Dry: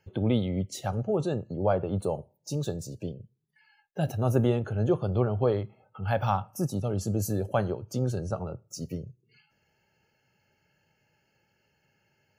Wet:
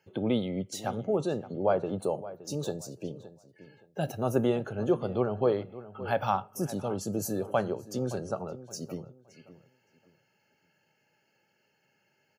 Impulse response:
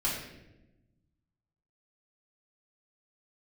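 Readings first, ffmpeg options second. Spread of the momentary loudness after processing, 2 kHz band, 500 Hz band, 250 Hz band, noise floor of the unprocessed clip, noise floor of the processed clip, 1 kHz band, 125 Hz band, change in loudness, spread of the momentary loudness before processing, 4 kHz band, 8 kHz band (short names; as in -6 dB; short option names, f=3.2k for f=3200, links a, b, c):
12 LU, 0.0 dB, 0.0 dB, -1.5 dB, -73 dBFS, -73 dBFS, 0.0 dB, -8.0 dB, -2.0 dB, 12 LU, 0.0 dB, 0.0 dB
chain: -filter_complex "[0:a]highpass=190,asplit=2[a][b];[b]adelay=569,lowpass=f=2.9k:p=1,volume=-15.5dB,asplit=2[c][d];[d]adelay=569,lowpass=f=2.9k:p=1,volume=0.25,asplit=2[e][f];[f]adelay=569,lowpass=f=2.9k:p=1,volume=0.25[g];[c][e][g]amix=inputs=3:normalize=0[h];[a][h]amix=inputs=2:normalize=0"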